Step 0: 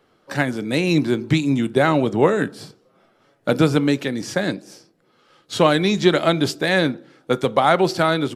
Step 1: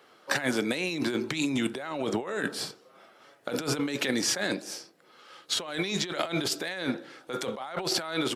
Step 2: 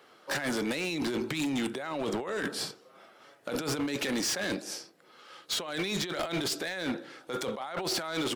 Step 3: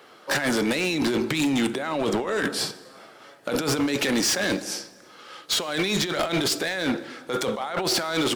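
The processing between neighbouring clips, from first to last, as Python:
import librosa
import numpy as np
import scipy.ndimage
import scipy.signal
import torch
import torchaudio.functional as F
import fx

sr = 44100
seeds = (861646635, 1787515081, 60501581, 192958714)

y1 = fx.highpass(x, sr, hz=710.0, slope=6)
y1 = fx.over_compress(y1, sr, threshold_db=-31.0, ratio=-1.0)
y2 = np.clip(y1, -10.0 ** (-27.0 / 20.0), 10.0 ** (-27.0 / 20.0))
y3 = fx.rev_plate(y2, sr, seeds[0], rt60_s=2.0, hf_ratio=0.8, predelay_ms=0, drr_db=17.0)
y3 = F.gain(torch.from_numpy(y3), 7.5).numpy()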